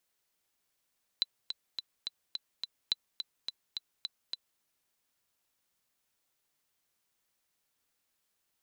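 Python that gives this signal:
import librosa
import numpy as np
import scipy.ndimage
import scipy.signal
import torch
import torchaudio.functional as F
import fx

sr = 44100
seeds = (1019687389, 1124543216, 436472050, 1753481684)

y = fx.click_track(sr, bpm=212, beats=6, bars=2, hz=4000.0, accent_db=8.0, level_db=-14.5)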